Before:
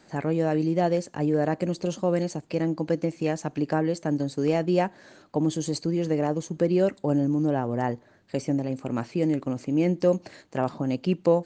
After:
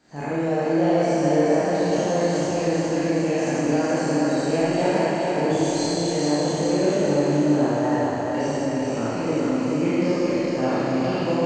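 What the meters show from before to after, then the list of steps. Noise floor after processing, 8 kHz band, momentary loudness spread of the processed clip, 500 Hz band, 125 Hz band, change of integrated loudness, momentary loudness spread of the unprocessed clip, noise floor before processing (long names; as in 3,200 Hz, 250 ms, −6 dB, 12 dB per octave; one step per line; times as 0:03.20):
−26 dBFS, +9.5 dB, 4 LU, +4.5 dB, +1.0 dB, +4.5 dB, 6 LU, −57 dBFS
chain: peak hold with a decay on every bin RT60 1.68 s
feedback echo with a high-pass in the loop 421 ms, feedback 60%, high-pass 170 Hz, level −3 dB
four-comb reverb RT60 1.4 s, combs from 27 ms, DRR −7 dB
level −8 dB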